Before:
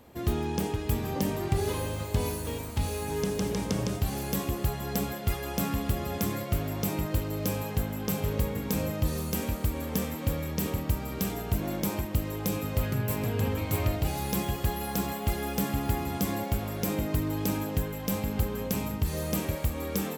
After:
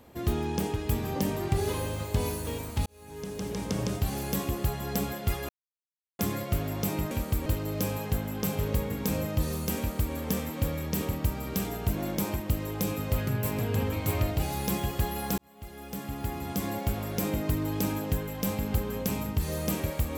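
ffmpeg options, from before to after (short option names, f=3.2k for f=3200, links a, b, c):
-filter_complex "[0:a]asplit=7[a][b][c][d][e][f][g];[a]atrim=end=2.86,asetpts=PTS-STARTPTS,afade=t=out:st=2.856:d=0.004:c=hsin[h];[b]atrim=start=2.86:end=5.49,asetpts=PTS-STARTPTS,afade=t=in:d=1.02,afade=t=out:st=2.626:d=0.004:c=hsin[i];[c]atrim=start=5.49:end=6.19,asetpts=PTS-STARTPTS,volume=0[j];[d]atrim=start=6.19:end=7.112,asetpts=PTS-STARTPTS,afade=t=in:d=0.004:c=hsin[k];[e]atrim=start=9.428:end=9.782[l];[f]atrim=start=7.108:end=15.03,asetpts=PTS-STARTPTS,afade=t=out:st=7.918:d=0.004:c=hsin[m];[g]atrim=start=15.03,asetpts=PTS-STARTPTS,afade=t=in:d=1.55[n];[h][i][j][k]concat=n=4:v=0:a=1[o];[o][l]acrossfade=d=0.004:c1=hsin:c2=hsin[p];[m][n]concat=n=2:v=0:a=1[q];[p][q]acrossfade=d=0.004:c1=hsin:c2=hsin"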